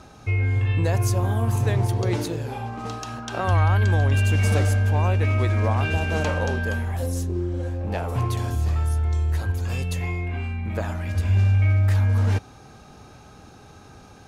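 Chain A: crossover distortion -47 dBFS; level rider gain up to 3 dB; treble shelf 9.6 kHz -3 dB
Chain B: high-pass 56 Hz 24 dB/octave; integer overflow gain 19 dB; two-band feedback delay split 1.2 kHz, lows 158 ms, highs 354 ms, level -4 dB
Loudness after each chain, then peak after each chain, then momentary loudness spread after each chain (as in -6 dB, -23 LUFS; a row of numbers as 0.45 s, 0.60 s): -20.5 LUFS, -22.5 LUFS; -7.5 dBFS, -8.0 dBFS; 9 LU, 10 LU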